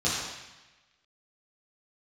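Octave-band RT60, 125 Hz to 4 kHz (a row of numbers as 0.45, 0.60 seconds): 1.2, 1.1, 1.0, 1.1, 1.3, 1.1 seconds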